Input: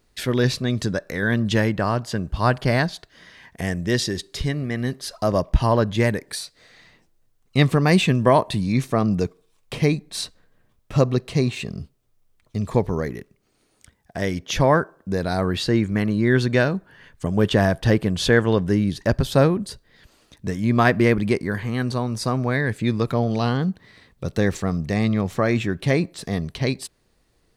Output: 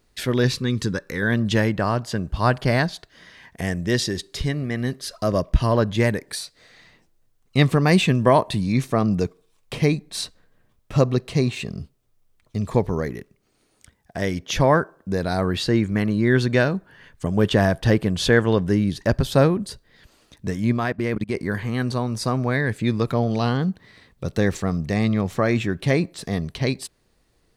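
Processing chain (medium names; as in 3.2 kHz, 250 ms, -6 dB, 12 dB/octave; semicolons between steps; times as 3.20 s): 0.48–1.22 s: Butterworth band-stop 660 Hz, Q 2.4; 4.96–5.75 s: peaking EQ 840 Hz -10 dB 0.32 oct; 20.72–21.37 s: level held to a coarse grid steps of 23 dB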